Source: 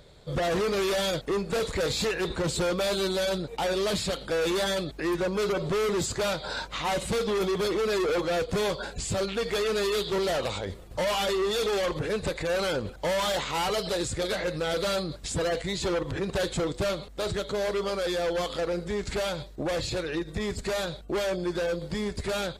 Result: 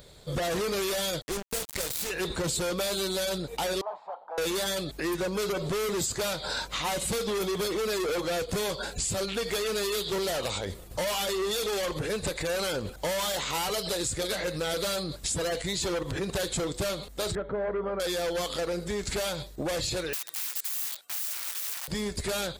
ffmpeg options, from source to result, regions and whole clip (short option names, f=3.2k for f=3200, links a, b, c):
-filter_complex "[0:a]asettb=1/sr,asplit=3[a][b][c];[a]atrim=end=1.224[d];[b]atrim=start=1.22:end=2.1,asetpts=PTS-STARTPTS,afade=t=in:d=0.004:c=qsin,afade=t=out:st=0.876:d=0.004:c=qsin,acrusher=bits=3:mix=0:aa=0.5,aeval=exprs='sgn(val(0))*max(abs(val(0))-0.00501,0)':c=same[e];[c]atrim=start=2.096[f];[d][e]acrossfade=d=0.004:c1=hsin:c2=qsin[g];[g][f]acrossfade=d=0.004:c1=qsin:c2=hsin,asettb=1/sr,asplit=3[h][i][j];[h]atrim=end=3.814[k];[i]atrim=start=3.81:end=4.38,asetpts=PTS-STARTPTS,afade=t=in:d=0.004:c=qsin,afade=t=out:st=0.566:d=0.004:c=qsin,asuperpass=centerf=850:order=4:qfactor=3,acontrast=55[l];[j]atrim=start=4.376[m];[k][l]acrossfade=d=0.004:c1=hsin:c2=qsin[n];[n][m]acrossfade=d=0.004:c1=qsin:c2=hsin,asettb=1/sr,asplit=3[o][p][q];[o]atrim=end=17.354[r];[p]atrim=start=17.35:end=18,asetpts=PTS-STARTPTS,afade=t=in:d=0.004:c=qsin,afade=t=out:st=0.646:d=0.004:c=qsin,lowpass=f=1.7k:w=0.5412,lowpass=f=1.7k:w=1.3066,bandreject=f=1.1k:w=13[s];[q]atrim=start=17.996[t];[r][s]acrossfade=d=0.004:c1=hsin:c2=qsin[u];[u][t]acrossfade=d=0.004:c1=qsin:c2=hsin,asettb=1/sr,asplit=3[v][w][x];[v]atrim=end=20.134[y];[w]atrim=start=20.13:end=21.88,asetpts=PTS-STARTPTS,afade=t=in:d=0.004:c=qsin,afade=t=out:st=1.746:d=0.004:c=qsin,aeval=exprs='(mod(47.3*val(0)+1,2)-1)/47.3':c=same,highpass=1.1k[z];[x]atrim=start=21.876[aa];[y][z]acrossfade=d=0.004:c1=hsin:c2=qsin[ab];[ab][aa]acrossfade=d=0.004:c1=qsin:c2=hsin,aemphasis=mode=production:type=50kf,acompressor=threshold=-27dB:ratio=6"